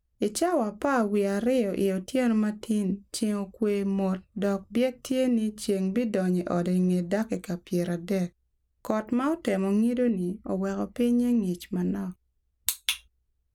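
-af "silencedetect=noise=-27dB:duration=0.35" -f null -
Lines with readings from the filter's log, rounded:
silence_start: 8.26
silence_end: 8.85 | silence_duration: 0.59
silence_start: 12.03
silence_end: 12.69 | silence_duration: 0.66
silence_start: 12.94
silence_end: 13.54 | silence_duration: 0.61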